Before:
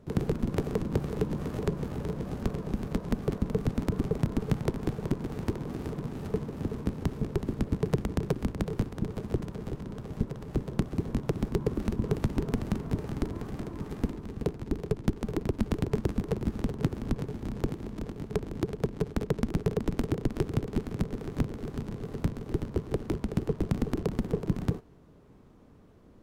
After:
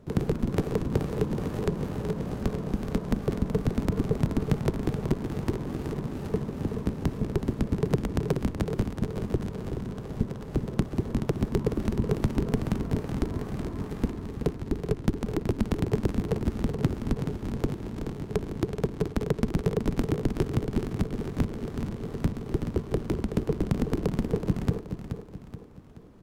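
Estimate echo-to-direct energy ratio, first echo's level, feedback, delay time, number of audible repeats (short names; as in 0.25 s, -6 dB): -7.5 dB, -8.5 dB, 44%, 0.427 s, 4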